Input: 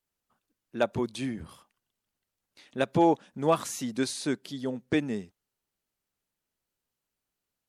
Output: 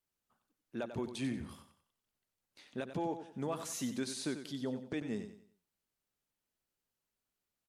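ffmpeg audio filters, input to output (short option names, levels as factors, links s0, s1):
-af "alimiter=limit=0.0668:level=0:latency=1:release=234,aecho=1:1:93|186|279|372:0.316|0.108|0.0366|0.0124,volume=0.631"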